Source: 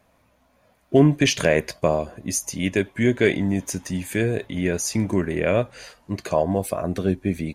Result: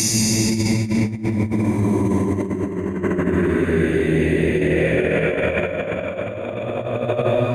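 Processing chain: Paulstretch 9.8×, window 0.25 s, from 4.89; negative-ratio compressor -24 dBFS, ratio -0.5; gain +5 dB

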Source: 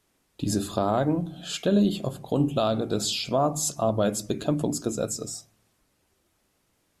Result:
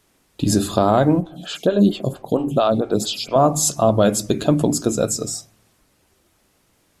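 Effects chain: 1.2–3.36 photocell phaser 4.4 Hz; gain +8.5 dB

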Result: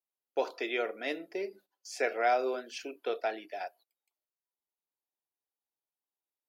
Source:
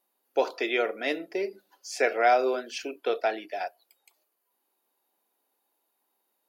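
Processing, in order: gate -51 dBFS, range -17 dB; gain -6 dB

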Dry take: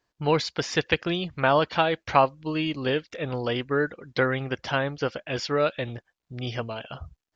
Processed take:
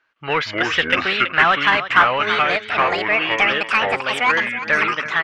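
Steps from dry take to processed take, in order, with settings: speed glide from 91% -> 190%; echoes that change speed 0.161 s, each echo -5 st, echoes 2; echo 0.328 s -15.5 dB; overdrive pedal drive 18 dB, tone 2300 Hz, clips at -3.5 dBFS; band shelf 1900 Hz +11 dB; gain -6.5 dB

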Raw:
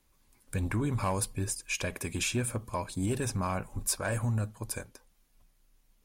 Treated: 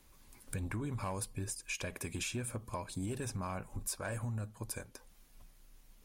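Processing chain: compressor 2.5:1, threshold -50 dBFS, peak gain reduction 16 dB; gain +6.5 dB

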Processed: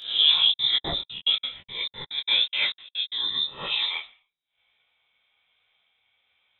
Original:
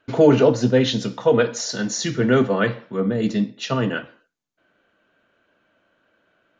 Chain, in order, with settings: spectral swells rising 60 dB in 0.44 s; 0.42–3.25 step gate "xx.x.x.xx." 178 bpm -60 dB; inverted band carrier 3800 Hz; detuned doubles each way 37 cents; gain -3 dB

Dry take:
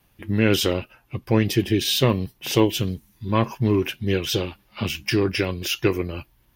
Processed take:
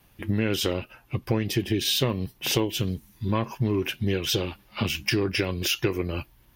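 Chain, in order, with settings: compressor 4:1, threshold -25 dBFS, peak gain reduction 12 dB; gain +3 dB

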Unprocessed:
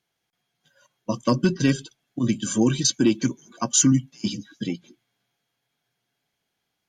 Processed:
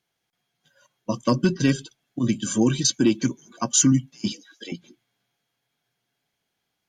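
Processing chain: 4.32–4.72 HPF 420 Hz 24 dB/oct

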